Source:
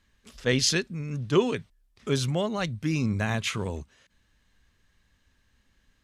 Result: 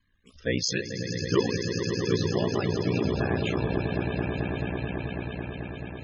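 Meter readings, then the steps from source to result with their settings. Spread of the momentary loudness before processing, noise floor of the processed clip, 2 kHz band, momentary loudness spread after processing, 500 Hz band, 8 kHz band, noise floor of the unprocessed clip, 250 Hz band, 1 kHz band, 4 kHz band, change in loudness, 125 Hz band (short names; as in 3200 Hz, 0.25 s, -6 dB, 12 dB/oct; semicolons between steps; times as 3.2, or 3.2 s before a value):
11 LU, -56 dBFS, 0.0 dB, 9 LU, +2.0 dB, -4.0 dB, -69 dBFS, +2.0 dB, +0.5 dB, -2.5 dB, -1.5 dB, +1.5 dB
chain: swelling echo 0.109 s, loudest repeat 8, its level -9 dB; ring modulator 30 Hz; loudest bins only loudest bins 64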